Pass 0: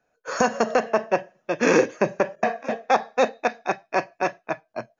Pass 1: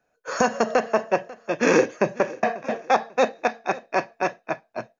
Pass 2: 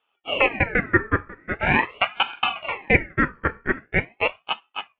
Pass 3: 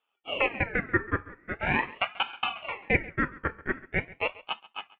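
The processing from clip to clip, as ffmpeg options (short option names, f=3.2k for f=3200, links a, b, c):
-af "aecho=1:1:543|1086|1629:0.1|0.032|0.0102"
-af "lowpass=f=1.1k:t=q:w=10,aeval=exprs='val(0)*sin(2*PI*1300*n/s+1300*0.5/0.43*sin(2*PI*0.43*n/s))':c=same,volume=-3dB"
-af "aecho=1:1:136:0.1,volume=-7dB"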